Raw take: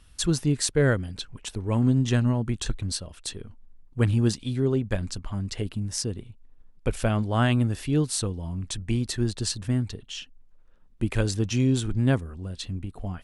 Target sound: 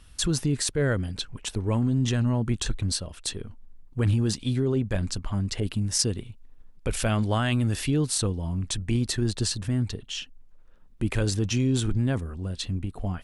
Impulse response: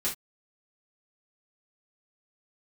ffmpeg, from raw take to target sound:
-filter_complex "[0:a]alimiter=limit=-19.5dB:level=0:latency=1:release=17,asettb=1/sr,asplit=3[link_01][link_02][link_03];[link_01]atrim=end=5.604[link_04];[link_02]atrim=start=5.6:end=7.9,asetpts=PTS-STARTPTS,afade=type=in:duration=0.004:curve=qsin,afade=type=out:start_time=2.296:duration=0.004:curve=qsin,adynamicequalizer=threshold=0.00631:dfrequency=1500:dqfactor=0.7:tfrequency=1500:tqfactor=0.7:attack=5:release=100:ratio=0.375:range=2.5:mode=boostabove:tftype=highshelf[link_05];[link_03]atrim=start=7.896[link_06];[link_04][link_05]acrossfade=duration=0.004:curve1=hsin:curve2=qsin[link_07];[link_07][link_06]acrossfade=duration=0.004:curve1=qsin:curve2=hsin,volume=3dB"

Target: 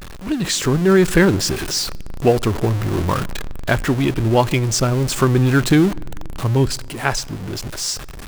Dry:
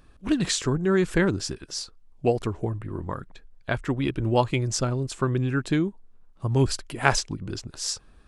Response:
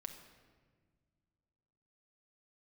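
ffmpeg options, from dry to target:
-filter_complex "[0:a]aeval=exprs='val(0)+0.5*0.0398*sgn(val(0))':channel_layout=same,dynaudnorm=framelen=130:gausssize=9:maxgain=11.5dB,asplit=2[link_01][link_02];[1:a]atrim=start_sample=2205[link_03];[link_02][link_03]afir=irnorm=-1:irlink=0,volume=-11.5dB[link_04];[link_01][link_04]amix=inputs=2:normalize=0,volume=-2dB"

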